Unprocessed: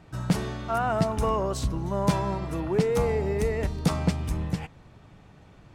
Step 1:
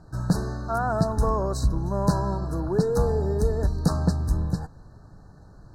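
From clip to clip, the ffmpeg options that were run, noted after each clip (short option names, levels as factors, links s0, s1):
-af "afftfilt=real='re*(1-between(b*sr/4096,1800,3800))':imag='im*(1-between(b*sr/4096,1800,3800))':win_size=4096:overlap=0.75,lowshelf=f=70:g=11"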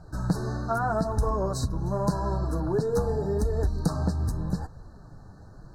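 -af "acompressor=threshold=0.0708:ratio=6,flanger=delay=1.3:depth=9.5:regen=-30:speed=0.84:shape=triangular,volume=1.78"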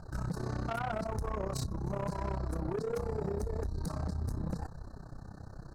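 -af "acompressor=threshold=0.0398:ratio=6,tremolo=f=32:d=0.889,asoftclip=type=tanh:threshold=0.0211,volume=1.68"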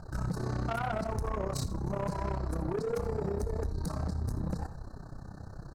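-af "aecho=1:1:81|162|243:0.178|0.0498|0.0139,volume=1.26"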